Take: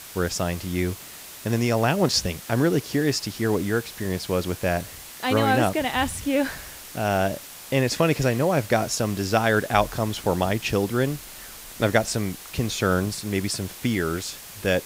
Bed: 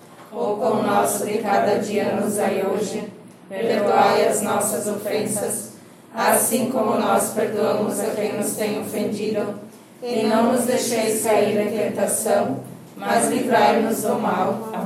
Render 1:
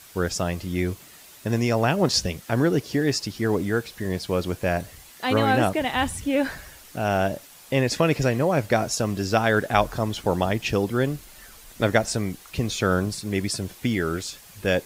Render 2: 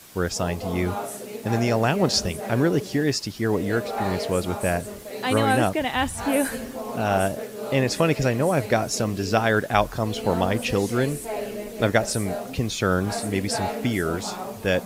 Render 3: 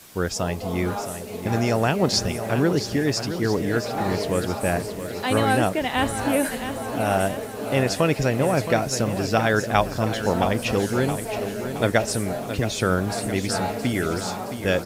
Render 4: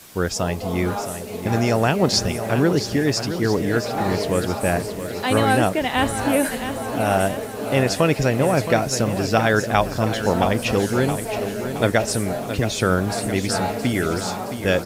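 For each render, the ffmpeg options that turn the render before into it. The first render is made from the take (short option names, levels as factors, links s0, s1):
-af "afftdn=nr=8:nf=-41"
-filter_complex "[1:a]volume=0.237[s0];[0:a][s0]amix=inputs=2:normalize=0"
-af "aecho=1:1:670|1340|2010|2680|3350|4020:0.316|0.174|0.0957|0.0526|0.0289|0.0159"
-af "volume=1.33,alimiter=limit=0.708:level=0:latency=1"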